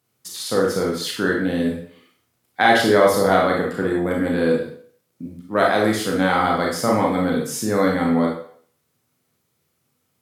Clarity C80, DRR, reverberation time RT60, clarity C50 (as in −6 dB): 7.5 dB, −2.0 dB, 0.55 s, 3.0 dB